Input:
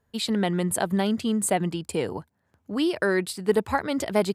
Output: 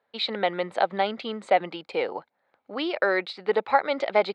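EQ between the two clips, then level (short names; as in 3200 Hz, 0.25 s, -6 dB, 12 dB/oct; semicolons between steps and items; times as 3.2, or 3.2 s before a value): speaker cabinet 360–4300 Hz, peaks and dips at 540 Hz +9 dB, 790 Hz +9 dB, 1300 Hz +7 dB, 2200 Hz +10 dB, 3900 Hz +8 dB; -3.0 dB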